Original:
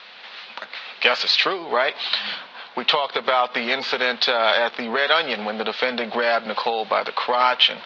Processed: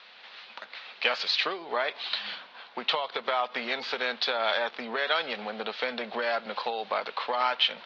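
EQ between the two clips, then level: low shelf 110 Hz -8 dB; -8.5 dB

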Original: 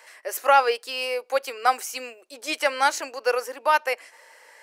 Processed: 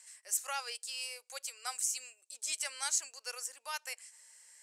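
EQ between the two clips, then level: band-pass 7900 Hz, Q 3.2; +6.0 dB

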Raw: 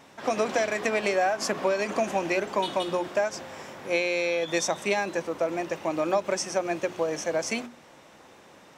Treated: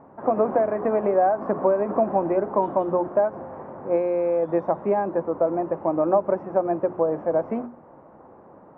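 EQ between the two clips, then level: LPF 1100 Hz 24 dB/oct; +5.5 dB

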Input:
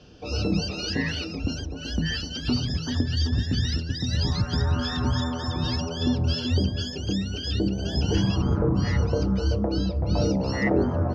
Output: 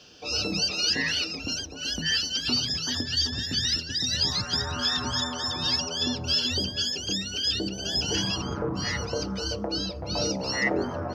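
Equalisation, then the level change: tilt +3.5 dB/oct; 0.0 dB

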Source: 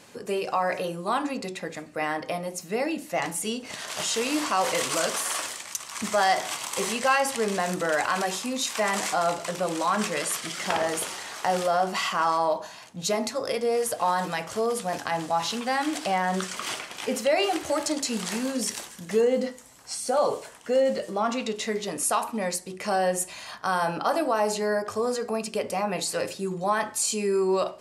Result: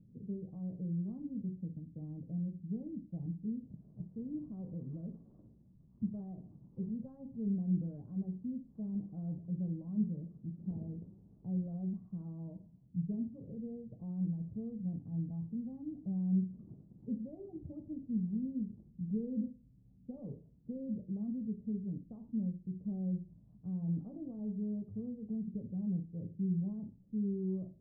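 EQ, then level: ladder low-pass 210 Hz, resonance 40%; low shelf 64 Hz +9 dB; +5.0 dB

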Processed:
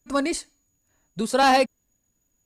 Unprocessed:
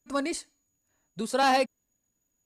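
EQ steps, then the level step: low shelf 100 Hz +7 dB; +5.0 dB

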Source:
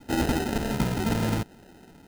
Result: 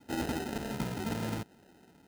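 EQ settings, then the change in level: HPF 97 Hz 6 dB/oct; -8.0 dB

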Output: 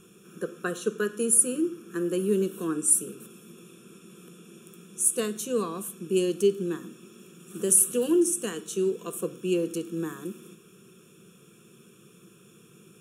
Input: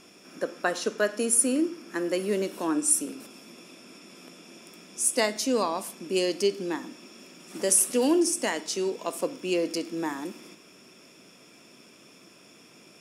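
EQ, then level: bell 82 Hz +14.5 dB 0.97 oct; fixed phaser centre 410 Hz, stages 8; fixed phaser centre 2100 Hz, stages 4; +5.0 dB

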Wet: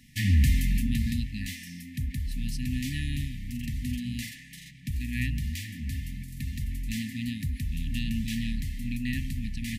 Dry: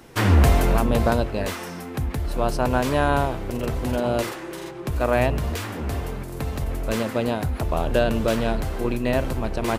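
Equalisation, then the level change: brick-wall FIR band-stop 280–1700 Hz; -5.0 dB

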